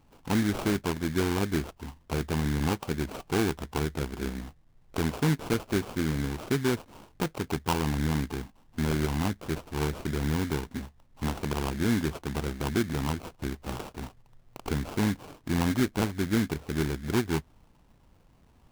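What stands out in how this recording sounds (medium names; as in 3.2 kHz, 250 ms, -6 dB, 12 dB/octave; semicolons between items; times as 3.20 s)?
aliases and images of a low sample rate 1.9 kHz, jitter 20%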